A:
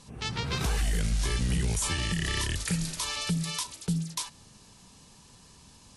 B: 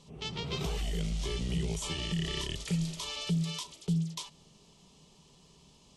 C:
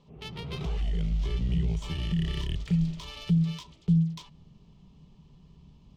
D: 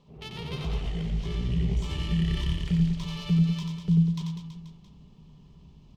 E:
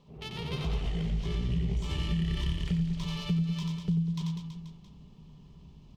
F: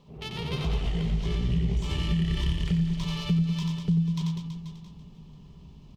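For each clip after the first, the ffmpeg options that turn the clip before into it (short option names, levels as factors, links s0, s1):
-af "equalizer=f=100:t=o:w=0.33:g=-11,equalizer=f=160:t=o:w=0.33:g=8,equalizer=f=400:t=o:w=0.33:g=9,equalizer=f=630:t=o:w=0.33:g=5,equalizer=f=1600:t=o:w=0.33:g=-11,equalizer=f=3150:t=o:w=0.33:g=7,equalizer=f=10000:t=o:w=0.33:g=-12,volume=0.473"
-af "adynamicsmooth=sensitivity=5:basefreq=2900,asubboost=boost=5:cutoff=210,volume=0.841"
-af "aecho=1:1:90|198|327.6|483.1|669.7:0.631|0.398|0.251|0.158|0.1"
-af "acompressor=threshold=0.0562:ratio=10"
-af "aecho=1:1:491:0.168,volume=1.5"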